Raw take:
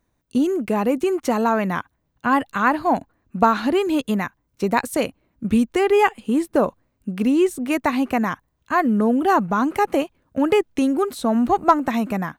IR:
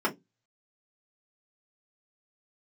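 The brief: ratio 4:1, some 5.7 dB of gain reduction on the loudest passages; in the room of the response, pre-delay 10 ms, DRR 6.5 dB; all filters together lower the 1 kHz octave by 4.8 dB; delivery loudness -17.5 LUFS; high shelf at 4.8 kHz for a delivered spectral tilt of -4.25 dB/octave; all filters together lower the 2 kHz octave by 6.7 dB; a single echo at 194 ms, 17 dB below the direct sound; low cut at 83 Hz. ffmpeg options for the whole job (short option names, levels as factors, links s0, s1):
-filter_complex "[0:a]highpass=83,equalizer=f=1000:t=o:g=-4.5,equalizer=f=2000:t=o:g=-6,highshelf=f=4800:g=-7.5,acompressor=threshold=0.1:ratio=4,aecho=1:1:194:0.141,asplit=2[s0][s1];[1:a]atrim=start_sample=2205,adelay=10[s2];[s1][s2]afir=irnorm=-1:irlink=0,volume=0.133[s3];[s0][s3]amix=inputs=2:normalize=0,volume=2.11"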